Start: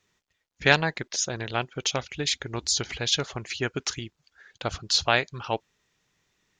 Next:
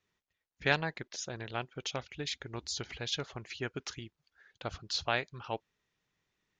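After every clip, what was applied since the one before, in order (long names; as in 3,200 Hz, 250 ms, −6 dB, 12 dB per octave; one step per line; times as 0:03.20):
high-frequency loss of the air 78 metres
level −8.5 dB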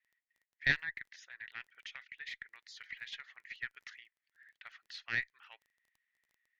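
four-pole ladder band-pass 2,000 Hz, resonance 80%
surface crackle 17 per second −58 dBFS
harmonic generator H 2 −8 dB, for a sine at −19 dBFS
level +3 dB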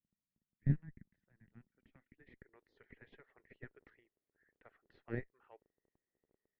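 low-pass filter sweep 200 Hz → 420 Hz, 0:01.64–0:02.56
level +8.5 dB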